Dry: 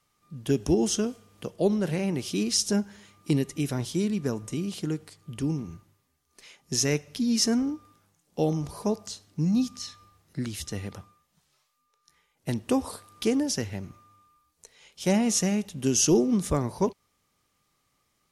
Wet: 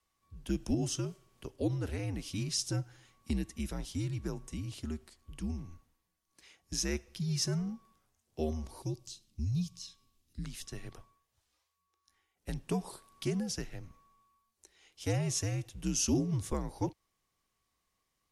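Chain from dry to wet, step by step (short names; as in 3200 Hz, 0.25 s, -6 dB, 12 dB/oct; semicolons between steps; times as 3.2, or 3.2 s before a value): frequency shift -80 Hz; 8.82–10.44 band shelf 950 Hz -12.5 dB 2.5 oct; gain -8.5 dB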